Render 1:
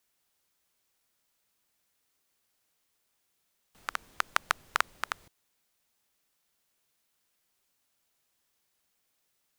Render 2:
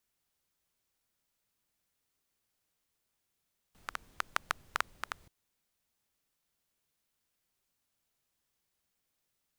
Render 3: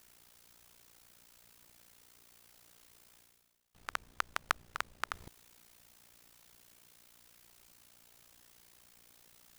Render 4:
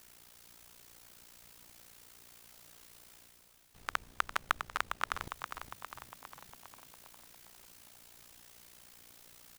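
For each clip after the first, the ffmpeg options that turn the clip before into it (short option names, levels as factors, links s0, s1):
-af "lowshelf=f=210:g=8,volume=0.501"
-af "areverse,acompressor=mode=upward:threshold=0.00562:ratio=2.5,areverse,tremolo=f=59:d=0.857,volume=1.58"
-filter_complex "[0:a]asoftclip=type=tanh:threshold=0.211,asplit=2[s0][s1];[s1]asplit=7[s2][s3][s4][s5][s6][s7][s8];[s2]adelay=405,afreqshift=-68,volume=0.398[s9];[s3]adelay=810,afreqshift=-136,volume=0.232[s10];[s4]adelay=1215,afreqshift=-204,volume=0.133[s11];[s5]adelay=1620,afreqshift=-272,volume=0.0776[s12];[s6]adelay=2025,afreqshift=-340,volume=0.0452[s13];[s7]adelay=2430,afreqshift=-408,volume=0.026[s14];[s8]adelay=2835,afreqshift=-476,volume=0.0151[s15];[s9][s10][s11][s12][s13][s14][s15]amix=inputs=7:normalize=0[s16];[s0][s16]amix=inputs=2:normalize=0,volume=1.58"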